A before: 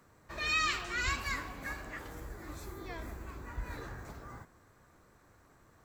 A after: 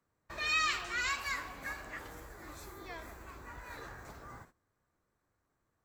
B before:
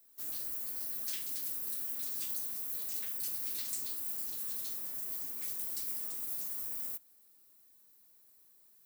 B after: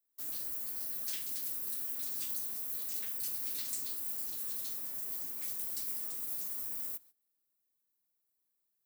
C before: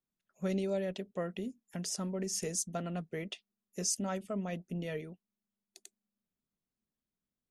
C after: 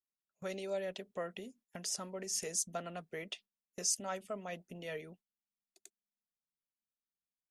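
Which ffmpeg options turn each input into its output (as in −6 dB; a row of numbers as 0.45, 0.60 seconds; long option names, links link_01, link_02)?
-filter_complex "[0:a]agate=range=-18dB:threshold=-55dB:ratio=16:detection=peak,acrossover=split=460[link_01][link_02];[link_01]acompressor=threshold=-50dB:ratio=6[link_03];[link_03][link_02]amix=inputs=2:normalize=0"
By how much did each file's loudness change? +1.5, 0.0, −2.5 LU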